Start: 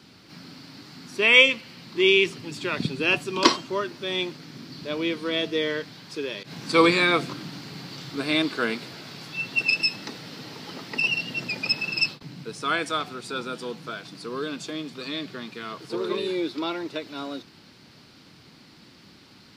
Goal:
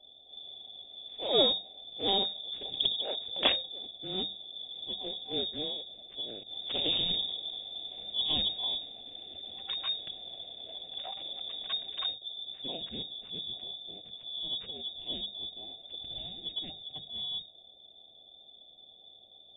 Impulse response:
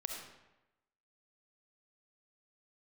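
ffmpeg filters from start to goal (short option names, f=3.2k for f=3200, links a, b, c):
-filter_complex "[0:a]afftfilt=real='re*(1-between(b*sr/4096,310,2900))':imag='im*(1-between(b*sr/4096,310,2900))':win_size=4096:overlap=0.75,aeval=exprs='0.562*(cos(1*acos(clip(val(0)/0.562,-1,1)))-cos(1*PI/2))+0.141*(cos(4*acos(clip(val(0)/0.562,-1,1)))-cos(4*PI/2))+0.0447*(cos(6*acos(clip(val(0)/0.562,-1,1)))-cos(6*PI/2))+0.00501*(cos(7*acos(clip(val(0)/0.562,-1,1)))-cos(7*PI/2))+0.112*(cos(8*acos(clip(val(0)/0.562,-1,1)))-cos(8*PI/2))':c=same,acrossover=split=180[a][b];[a]asoftclip=type=hard:threshold=-28dB[c];[c][b]amix=inputs=2:normalize=0,lowpass=f=3.1k:t=q:w=0.5098,lowpass=f=3.1k:t=q:w=0.6013,lowpass=f=3.1k:t=q:w=0.9,lowpass=f=3.1k:t=q:w=2.563,afreqshift=-3700,bandreject=f=50:t=h:w=6,bandreject=f=100:t=h:w=6,bandreject=f=150:t=h:w=6,bandreject=f=200:t=h:w=6"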